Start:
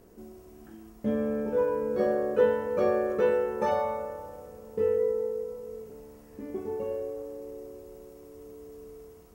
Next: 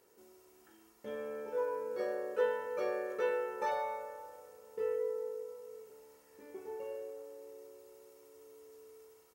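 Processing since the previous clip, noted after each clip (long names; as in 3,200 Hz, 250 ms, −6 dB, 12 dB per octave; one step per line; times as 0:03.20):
high-pass filter 1,200 Hz 6 dB per octave
comb filter 2.2 ms, depth 47%
level −3.5 dB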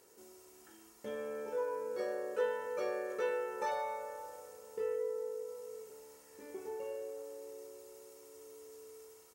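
parametric band 7,700 Hz +6.5 dB 1.4 octaves
in parallel at +1 dB: downward compressor, threshold −43 dBFS, peak gain reduction 16 dB
on the sum: level −4 dB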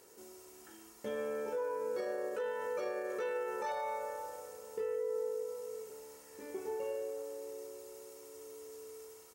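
brickwall limiter −33 dBFS, peak gain reduction 10 dB
level +3.5 dB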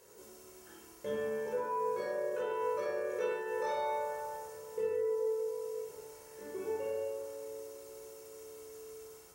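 convolution reverb RT60 0.85 s, pre-delay 20 ms, DRR 0 dB
level −3 dB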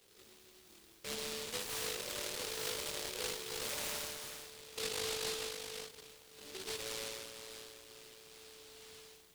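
short delay modulated by noise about 3,600 Hz, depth 0.39 ms
level −6 dB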